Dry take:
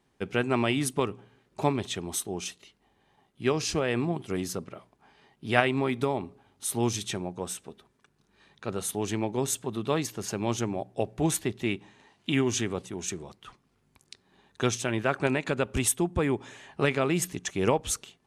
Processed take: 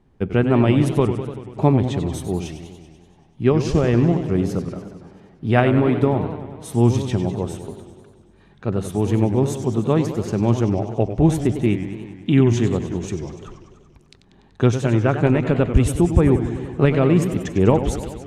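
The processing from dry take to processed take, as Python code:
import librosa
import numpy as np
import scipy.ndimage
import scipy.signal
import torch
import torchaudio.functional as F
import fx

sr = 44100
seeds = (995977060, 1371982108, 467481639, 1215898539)

y = fx.tilt_eq(x, sr, slope=-3.5)
y = fx.echo_warbled(y, sr, ms=96, feedback_pct=69, rate_hz=2.8, cents=183, wet_db=-10)
y = F.gain(torch.from_numpy(y), 4.0).numpy()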